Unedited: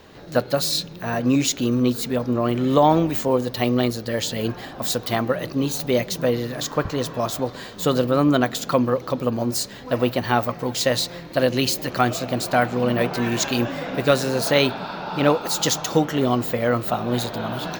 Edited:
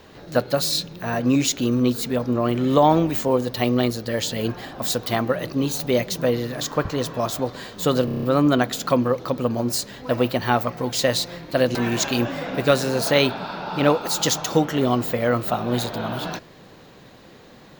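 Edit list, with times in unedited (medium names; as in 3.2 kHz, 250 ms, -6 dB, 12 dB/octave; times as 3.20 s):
8.05 s: stutter 0.03 s, 7 plays
11.57–13.15 s: delete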